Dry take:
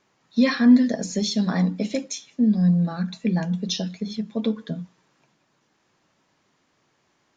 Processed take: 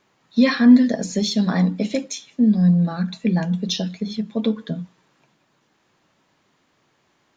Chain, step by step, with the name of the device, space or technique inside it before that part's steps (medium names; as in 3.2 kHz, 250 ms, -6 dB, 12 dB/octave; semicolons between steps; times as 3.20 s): exciter from parts (in parallel at -10 dB: high-pass 4.3 kHz 24 dB/octave + saturation -23.5 dBFS, distortion -16 dB + high-pass 2 kHz 24 dB/octave); on the sum: trim +3 dB